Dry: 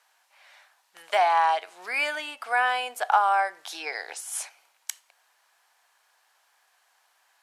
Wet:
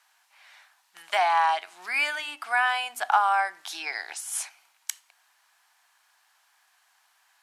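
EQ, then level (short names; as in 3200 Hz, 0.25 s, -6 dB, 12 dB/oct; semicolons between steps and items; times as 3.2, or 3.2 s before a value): bell 490 Hz -15 dB 0.62 oct; notches 50/100/150/200/250/300 Hz; +1.5 dB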